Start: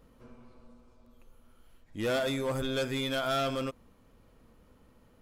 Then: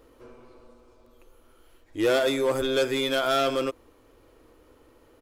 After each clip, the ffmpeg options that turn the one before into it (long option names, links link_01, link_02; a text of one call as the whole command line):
ffmpeg -i in.wav -af "firequalizer=gain_entry='entry(110,0);entry(190,-12);entry(310,12);entry(630,6)':delay=0.05:min_phase=1" out.wav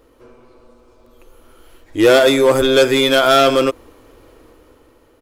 ffmpeg -i in.wav -af "dynaudnorm=framelen=480:gausssize=5:maxgain=9dB,volume=3.5dB" out.wav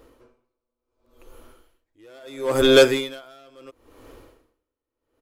ffmpeg -i in.wav -af "aeval=exprs='val(0)*pow(10,-38*(0.5-0.5*cos(2*PI*0.73*n/s))/20)':channel_layout=same" out.wav